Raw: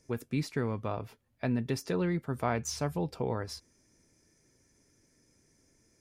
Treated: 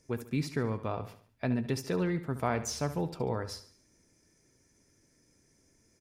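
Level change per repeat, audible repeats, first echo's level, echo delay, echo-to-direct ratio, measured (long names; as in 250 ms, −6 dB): −7.5 dB, 4, −13.0 dB, 71 ms, −12.0 dB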